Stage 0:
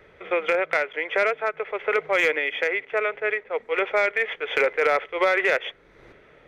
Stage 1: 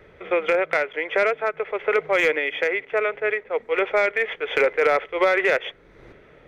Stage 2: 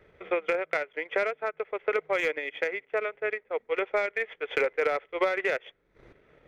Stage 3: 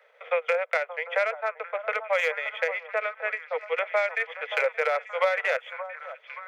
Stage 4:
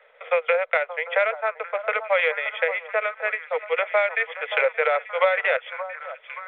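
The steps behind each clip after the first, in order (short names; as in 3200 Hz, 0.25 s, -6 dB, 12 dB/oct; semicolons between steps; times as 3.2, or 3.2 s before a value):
low shelf 480 Hz +5.5 dB
transient shaper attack +4 dB, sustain -10 dB; gain -8.5 dB
steep high-pass 480 Hz 96 dB/oct; delay with a stepping band-pass 0.576 s, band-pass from 860 Hz, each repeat 0.7 oct, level -8.5 dB; gain +3 dB
gain +4 dB; µ-law 64 kbps 8000 Hz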